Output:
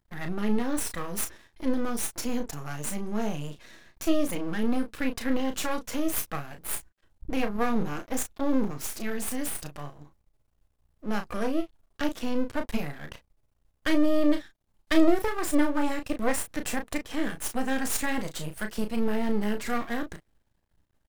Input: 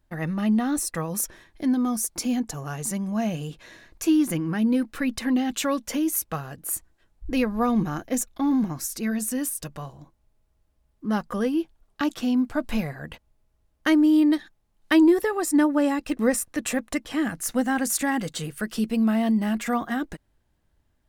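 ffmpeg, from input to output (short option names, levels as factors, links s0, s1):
-filter_complex "[0:a]aeval=exprs='max(val(0),0)':c=same,asplit=2[s0][s1];[s1]adelay=34,volume=0.422[s2];[s0][s2]amix=inputs=2:normalize=0"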